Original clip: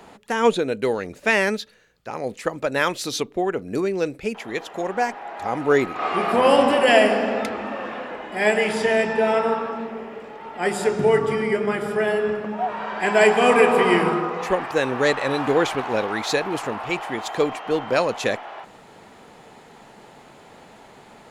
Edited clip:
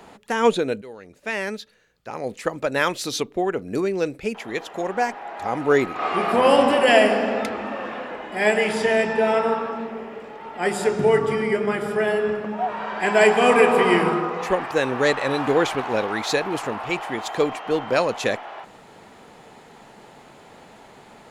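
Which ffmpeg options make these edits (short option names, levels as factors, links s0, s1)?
-filter_complex "[0:a]asplit=2[s0][s1];[s0]atrim=end=0.82,asetpts=PTS-STARTPTS,afade=t=out:st=0.816:d=0.004:c=hsin:silence=0.1[s2];[s1]atrim=start=0.82,asetpts=PTS-STARTPTS,afade=t=in:d=1.6:silence=0.1[s3];[s2][s3]concat=n=2:v=0:a=1"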